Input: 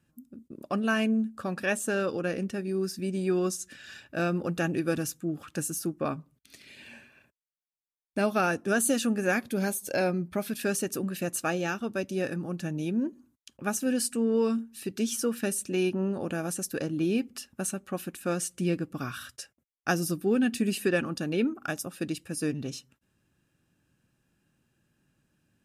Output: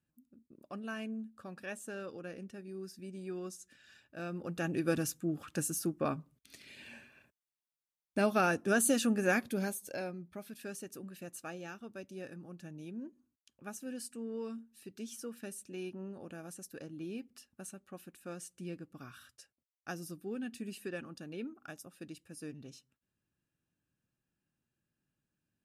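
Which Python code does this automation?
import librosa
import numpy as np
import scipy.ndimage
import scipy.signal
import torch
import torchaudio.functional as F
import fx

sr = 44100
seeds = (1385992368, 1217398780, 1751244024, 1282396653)

y = fx.gain(x, sr, db=fx.line((4.16, -14.5), (4.89, -3.0), (9.42, -3.0), (10.16, -15.0)))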